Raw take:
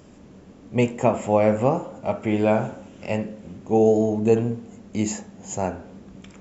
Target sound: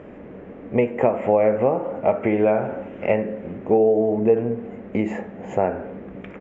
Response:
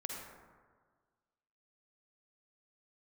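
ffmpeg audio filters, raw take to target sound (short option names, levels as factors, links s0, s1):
-af "acompressor=threshold=0.0562:ratio=6,firequalizer=gain_entry='entry(110,0);entry(480,11);entry(1000,4);entry(2000,9);entry(4400,-20);entry(8800,-27)':delay=0.05:min_phase=1,volume=1.33"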